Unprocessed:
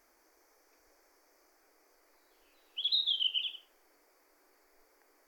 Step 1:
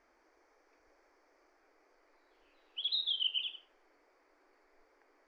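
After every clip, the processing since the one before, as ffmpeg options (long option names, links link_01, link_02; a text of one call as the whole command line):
ffmpeg -i in.wav -af "lowpass=3400" out.wav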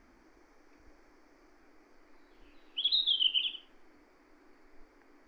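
ffmpeg -i in.wav -af "lowshelf=frequency=320:width_type=q:width=1.5:gain=13,volume=5.5dB" out.wav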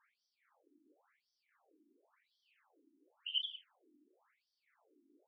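ffmpeg -i in.wav -af "afftfilt=real='re*between(b*sr/1024,260*pow(4400/260,0.5+0.5*sin(2*PI*0.94*pts/sr))/1.41,260*pow(4400/260,0.5+0.5*sin(2*PI*0.94*pts/sr))*1.41)':imag='im*between(b*sr/1024,260*pow(4400/260,0.5+0.5*sin(2*PI*0.94*pts/sr))/1.41,260*pow(4400/260,0.5+0.5*sin(2*PI*0.94*pts/sr))*1.41)':win_size=1024:overlap=0.75,volume=-5.5dB" out.wav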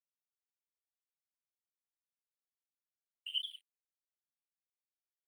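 ffmpeg -i in.wav -af "aeval=exprs='sgn(val(0))*max(abs(val(0))-0.00106,0)':channel_layout=same" out.wav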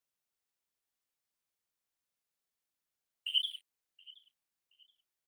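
ffmpeg -i in.wav -filter_complex "[0:a]asplit=2[link_01][link_02];[link_02]adelay=724,lowpass=frequency=2100:poles=1,volume=-18.5dB,asplit=2[link_03][link_04];[link_04]adelay=724,lowpass=frequency=2100:poles=1,volume=0.5,asplit=2[link_05][link_06];[link_06]adelay=724,lowpass=frequency=2100:poles=1,volume=0.5,asplit=2[link_07][link_08];[link_08]adelay=724,lowpass=frequency=2100:poles=1,volume=0.5[link_09];[link_01][link_03][link_05][link_07][link_09]amix=inputs=5:normalize=0,volume=6dB" out.wav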